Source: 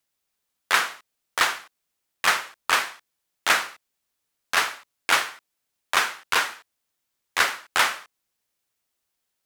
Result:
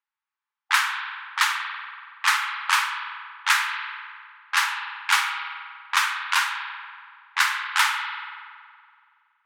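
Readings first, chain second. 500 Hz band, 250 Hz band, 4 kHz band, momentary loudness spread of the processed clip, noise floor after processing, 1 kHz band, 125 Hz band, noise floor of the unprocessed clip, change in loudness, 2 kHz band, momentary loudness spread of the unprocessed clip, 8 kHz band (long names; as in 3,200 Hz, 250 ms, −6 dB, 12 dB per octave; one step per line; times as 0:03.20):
below −40 dB, below −35 dB, +0.5 dB, 15 LU, below −85 dBFS, +1.0 dB, can't be measured, −80 dBFS, 0.0 dB, +1.5 dB, 11 LU, −0.5 dB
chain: linear-phase brick-wall high-pass 800 Hz
spring reverb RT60 2.2 s, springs 46 ms, chirp 20 ms, DRR 4 dB
low-pass that shuts in the quiet parts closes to 1,700 Hz, open at −19 dBFS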